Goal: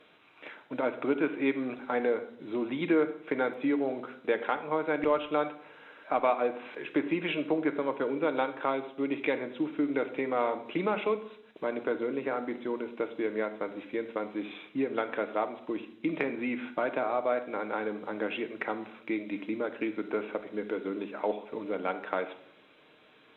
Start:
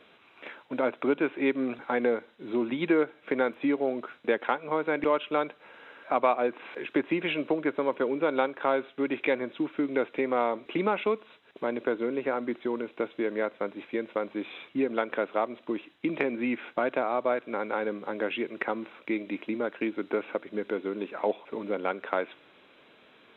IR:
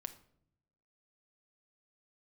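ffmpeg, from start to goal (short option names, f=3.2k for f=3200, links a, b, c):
-filter_complex "[0:a]asettb=1/sr,asplit=3[a][b][c];[a]atrim=end=8.704[d];[b]atrim=start=8.7:end=9.21,asetpts=PTS-STARTPTS,afade=t=in:d=0.004:c=qsin,afade=t=out:st=0.506:d=0.004:c=qsin,equalizer=f=1.6k:t=o:w=0.43:g=-8[e];[c]atrim=start=9.206[f];[d][e]acrossfade=d=0.004:c1=hsin:c2=qsin[g];[g][f]acrossfade=d=0.004:c1=qsin:c2=hsin[h];[1:a]atrim=start_sample=2205,afade=t=out:st=0.39:d=0.01,atrim=end_sample=17640,asetrate=37485,aresample=44100[i];[h][i]afir=irnorm=-1:irlink=0"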